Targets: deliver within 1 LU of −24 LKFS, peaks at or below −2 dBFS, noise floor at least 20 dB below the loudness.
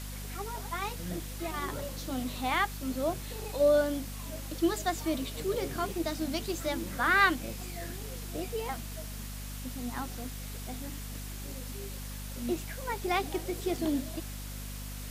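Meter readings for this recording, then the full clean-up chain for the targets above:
mains hum 50 Hz; hum harmonics up to 250 Hz; level of the hum −38 dBFS; background noise floor −40 dBFS; target noise floor −53 dBFS; integrated loudness −33.0 LKFS; sample peak −11.5 dBFS; target loudness −24.0 LKFS
→ hum removal 50 Hz, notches 5
broadband denoise 13 dB, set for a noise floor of −40 dBFS
level +9 dB

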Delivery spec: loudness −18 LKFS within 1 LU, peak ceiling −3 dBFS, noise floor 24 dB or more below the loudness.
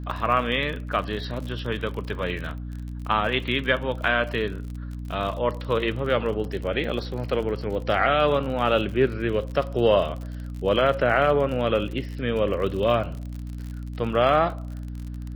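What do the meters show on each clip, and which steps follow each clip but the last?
crackle rate 46 per second; mains hum 60 Hz; hum harmonics up to 300 Hz; level of the hum −31 dBFS; integrated loudness −24.5 LKFS; sample peak −6.5 dBFS; target loudness −18.0 LKFS
→ click removal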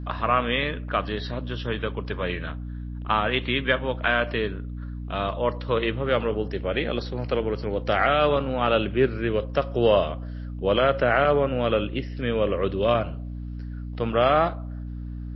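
crackle rate 0 per second; mains hum 60 Hz; hum harmonics up to 300 Hz; level of the hum −31 dBFS
→ hum removal 60 Hz, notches 5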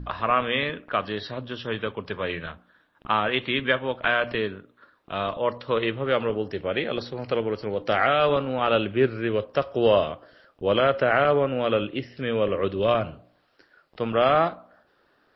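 mains hum none found; integrated loudness −25.0 LKFS; sample peak −6.5 dBFS; target loudness −18.0 LKFS
→ level +7 dB
brickwall limiter −3 dBFS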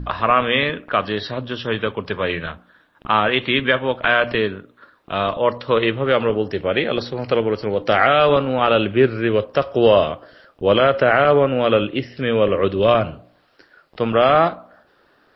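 integrated loudness −18.5 LKFS; sample peak −3.0 dBFS; background noise floor −58 dBFS

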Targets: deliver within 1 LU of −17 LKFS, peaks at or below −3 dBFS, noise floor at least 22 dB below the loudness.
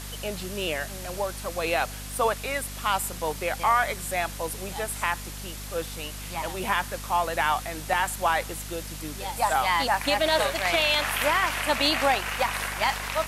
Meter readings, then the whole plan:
mains hum 50 Hz; hum harmonics up to 250 Hz; level of the hum −37 dBFS; background noise floor −37 dBFS; target noise floor −49 dBFS; integrated loudness −26.5 LKFS; sample peak −7.5 dBFS; target loudness −17.0 LKFS
→ hum removal 50 Hz, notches 5
broadband denoise 12 dB, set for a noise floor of −37 dBFS
level +9.5 dB
brickwall limiter −3 dBFS

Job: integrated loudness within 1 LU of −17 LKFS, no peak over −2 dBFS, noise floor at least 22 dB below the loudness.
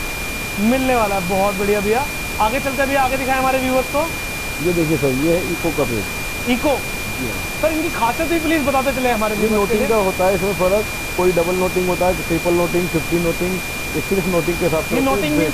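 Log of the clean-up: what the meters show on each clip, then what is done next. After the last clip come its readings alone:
interfering tone 2,400 Hz; level of the tone −26 dBFS; background noise floor −25 dBFS; target noise floor −40 dBFS; integrated loudness −18.0 LKFS; sample peak −4.5 dBFS; target loudness −17.0 LKFS
→ notch filter 2,400 Hz, Q 30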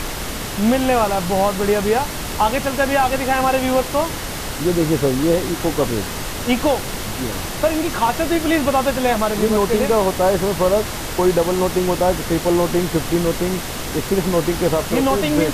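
interfering tone none found; background noise floor −27 dBFS; target noise floor −41 dBFS
→ noise reduction from a noise print 14 dB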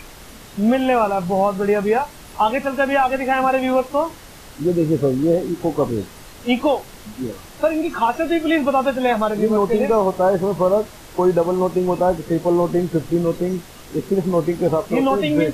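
background noise floor −41 dBFS; target noise floor −42 dBFS
→ noise reduction from a noise print 6 dB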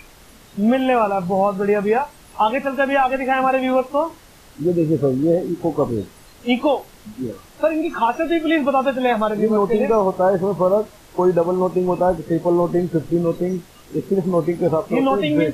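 background noise floor −46 dBFS; integrated loudness −19.5 LKFS; sample peak −6.5 dBFS; target loudness −17.0 LKFS
→ level +2.5 dB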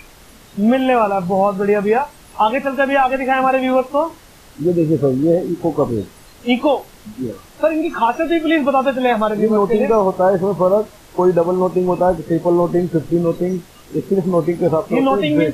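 integrated loudness −17.0 LKFS; sample peak −4.0 dBFS; background noise floor −44 dBFS

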